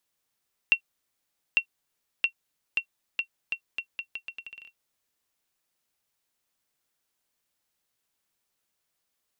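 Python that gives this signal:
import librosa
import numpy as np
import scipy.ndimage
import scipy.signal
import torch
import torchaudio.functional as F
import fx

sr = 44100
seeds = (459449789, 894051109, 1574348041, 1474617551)

y = fx.bouncing_ball(sr, first_gap_s=0.85, ratio=0.79, hz=2730.0, decay_ms=86.0, level_db=-9.0)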